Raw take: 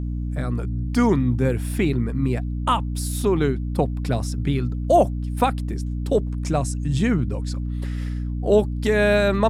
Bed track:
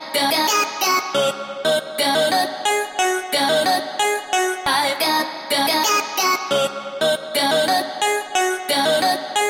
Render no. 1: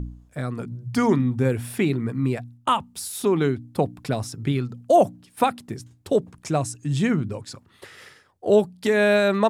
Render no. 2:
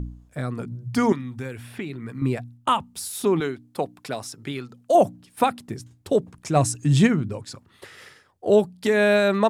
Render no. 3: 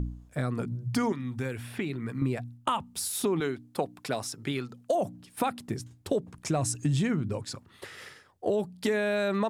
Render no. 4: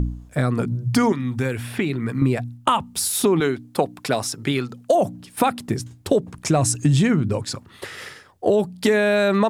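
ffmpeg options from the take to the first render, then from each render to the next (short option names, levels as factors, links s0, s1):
-af "bandreject=f=60:t=h:w=4,bandreject=f=120:t=h:w=4,bandreject=f=180:t=h:w=4,bandreject=f=240:t=h:w=4,bandreject=f=300:t=h:w=4"
-filter_complex "[0:a]asettb=1/sr,asplit=3[s0][s1][s2];[s0]atrim=end=1.124[s3];[s1]atrim=start=1.12:end=2.22,asetpts=PTS-STARTPTS,afade=t=in:d=0.004:c=qsin,afade=t=out:st=1.096:d=0.004:c=qsin,acrossover=split=1200|3900[s4][s5][s6];[s4]acompressor=threshold=0.0251:ratio=4[s7];[s5]acompressor=threshold=0.0112:ratio=4[s8];[s6]acompressor=threshold=0.002:ratio=4[s9];[s7][s8][s9]amix=inputs=3:normalize=0[s10];[s2]atrim=start=2.216[s11];[s3][s10]acrossfade=d=0.004:c1=hsin:c2=qsin[s12];[s12][s11]acrossfade=d=0.004:c1=qsin:c2=hsin,asettb=1/sr,asplit=3[s13][s14][s15];[s13]atrim=end=3.404[s16];[s14]atrim=start=3.4:end=4.95,asetpts=PTS-STARTPTS,afade=t=in:d=0.004:c=qsin,afade=t=out:st=1.546:d=0.004:c=qsin,highpass=f=550:p=1[s17];[s15]atrim=start=4.946[s18];[s16][s17]acrossfade=d=0.004:c1=hsin:c2=qsin[s19];[s19][s18]acrossfade=d=0.004:c1=qsin:c2=hsin,asplit=3[s20][s21][s22];[s20]afade=t=out:st=6.55:d=0.02[s23];[s21]acontrast=55,afade=t=in:st=6.55:d=0.02,afade=t=out:st=7.06:d=0.02[s24];[s22]afade=t=in:st=7.06:d=0.02[s25];[s23][s24][s25]amix=inputs=3:normalize=0"
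-af "alimiter=limit=0.237:level=0:latency=1:release=15,acompressor=threshold=0.0631:ratio=6"
-af "volume=2.99"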